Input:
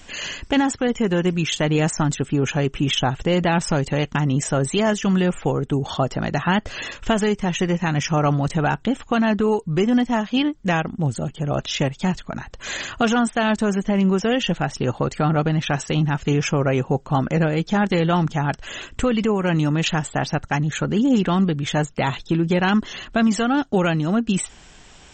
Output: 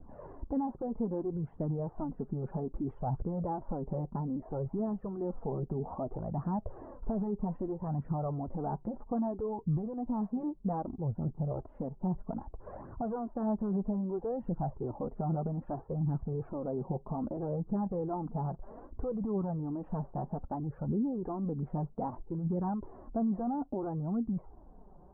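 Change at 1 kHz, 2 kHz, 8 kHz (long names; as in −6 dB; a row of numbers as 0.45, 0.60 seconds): −15.0 dB, below −35 dB, below −40 dB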